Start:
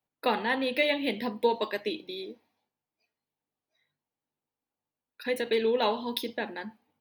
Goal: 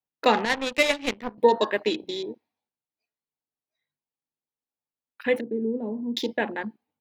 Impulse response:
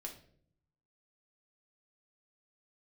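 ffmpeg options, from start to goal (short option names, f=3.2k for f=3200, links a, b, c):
-filter_complex "[0:a]afwtdn=0.00891,asettb=1/sr,asplit=3[a][b][c];[a]atrim=end=0.454[d];[b]atrim=start=0.45:end=1.38,asetpts=PTS-STARTPTS,afade=t=in:d=0.004:c=qsin,afade=t=out:st=0.926:d=0.004:c=qsin,aeval=exprs='0.188*(cos(1*acos(clip(val(0)/0.188,-1,1)))-cos(1*PI/2))+0.0299*(cos(3*acos(clip(val(0)/0.188,-1,1)))-cos(3*PI/2))+0.0119*(cos(7*acos(clip(val(0)/0.188,-1,1)))-cos(7*PI/2))':c=same[e];[c]atrim=start=1.376[f];[d][e]acrossfade=d=0.004:c1=hsin:c2=qsin[g];[g][f]acrossfade=d=0.004:c1=qsin:c2=hsin,asplit=3[h][i][j];[h]afade=t=out:st=5.39:d=0.02[k];[i]asuperpass=centerf=210:order=4:qfactor=1.1,afade=t=in:st=5.39:d=0.02,afade=t=out:st=6.16:d=0.02[l];[j]afade=t=in:st=6.16:d=0.02[m];[k][l][m]amix=inputs=3:normalize=0,volume=7dB"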